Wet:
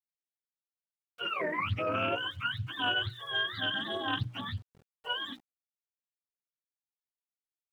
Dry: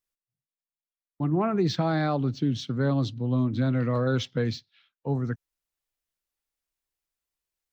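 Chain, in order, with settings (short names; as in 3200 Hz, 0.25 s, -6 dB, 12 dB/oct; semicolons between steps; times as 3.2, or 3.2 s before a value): spectrum mirrored in octaves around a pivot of 640 Hz; notches 60/120/180/240/300/360/420/480/540 Hz; notch comb 850 Hz; sample gate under -52.5 dBFS; Doppler distortion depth 0.43 ms; gain -3 dB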